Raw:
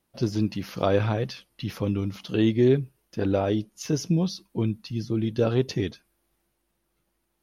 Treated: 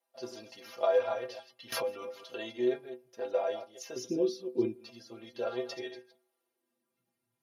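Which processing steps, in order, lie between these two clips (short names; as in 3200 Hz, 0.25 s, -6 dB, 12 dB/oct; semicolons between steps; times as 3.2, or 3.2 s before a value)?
reverse delay 0.14 s, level -10 dB; 3.96–4.76 resonant low shelf 500 Hz +12.5 dB, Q 3; metallic resonator 120 Hz, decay 0.23 s, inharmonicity 0.008; on a send at -22 dB: air absorption 370 m + reverb, pre-delay 3 ms; on the sum: high-pass sweep 610 Hz -> 120 Hz, 6.21–7.32; 1.72–2.32 backwards sustainer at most 44 dB/s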